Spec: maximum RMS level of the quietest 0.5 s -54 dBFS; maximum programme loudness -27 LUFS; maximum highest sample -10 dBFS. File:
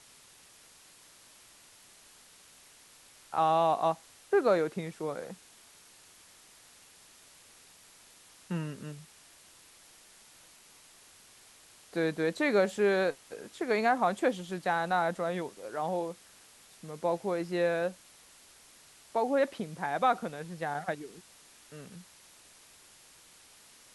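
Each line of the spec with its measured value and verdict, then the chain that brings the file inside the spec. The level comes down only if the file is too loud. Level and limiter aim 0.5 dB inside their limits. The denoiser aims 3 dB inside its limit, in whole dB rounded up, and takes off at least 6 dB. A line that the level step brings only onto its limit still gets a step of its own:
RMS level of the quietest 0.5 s -57 dBFS: OK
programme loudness -31.0 LUFS: OK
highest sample -14.5 dBFS: OK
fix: none

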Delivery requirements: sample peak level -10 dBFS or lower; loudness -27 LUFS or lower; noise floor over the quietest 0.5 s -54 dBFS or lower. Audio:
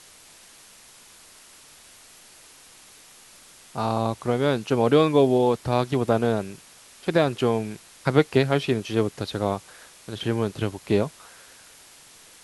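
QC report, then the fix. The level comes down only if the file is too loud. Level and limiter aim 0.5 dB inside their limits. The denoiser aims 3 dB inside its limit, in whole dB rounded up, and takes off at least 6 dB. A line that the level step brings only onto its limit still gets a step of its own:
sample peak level -4.5 dBFS: fail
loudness -24.0 LUFS: fail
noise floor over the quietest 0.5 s -50 dBFS: fail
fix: denoiser 6 dB, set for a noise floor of -50 dBFS; gain -3.5 dB; limiter -10.5 dBFS

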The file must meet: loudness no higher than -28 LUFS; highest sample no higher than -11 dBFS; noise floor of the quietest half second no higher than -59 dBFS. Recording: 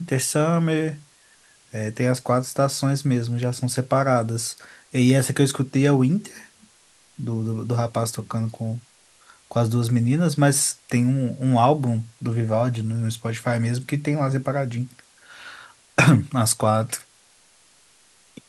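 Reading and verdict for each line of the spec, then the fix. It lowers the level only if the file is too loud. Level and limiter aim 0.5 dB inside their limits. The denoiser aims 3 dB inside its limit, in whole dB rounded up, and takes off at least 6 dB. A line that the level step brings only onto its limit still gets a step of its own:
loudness -22.0 LUFS: fail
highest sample -4.5 dBFS: fail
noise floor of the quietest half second -57 dBFS: fail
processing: gain -6.5 dB; limiter -11.5 dBFS

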